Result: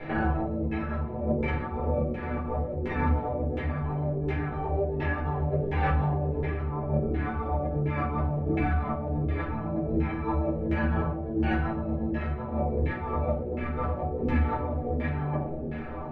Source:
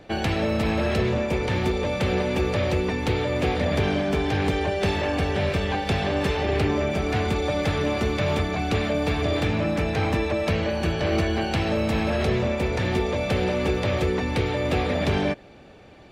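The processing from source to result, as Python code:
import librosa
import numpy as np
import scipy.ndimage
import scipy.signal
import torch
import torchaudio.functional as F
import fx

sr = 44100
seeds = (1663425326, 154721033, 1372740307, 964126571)

y = fx.over_compress(x, sr, threshold_db=-30.0, ratio=-0.5)
y = fx.filter_lfo_lowpass(y, sr, shape='saw_down', hz=1.4, low_hz=350.0, high_hz=2200.0, q=2.3)
y = fx.vibrato(y, sr, rate_hz=8.0, depth_cents=24.0)
y = fx.stiff_resonator(y, sr, f0_hz=75.0, decay_s=0.23, stiffness=0.008)
y = fx.room_shoebox(y, sr, seeds[0], volume_m3=270.0, walls='furnished', distance_m=4.2)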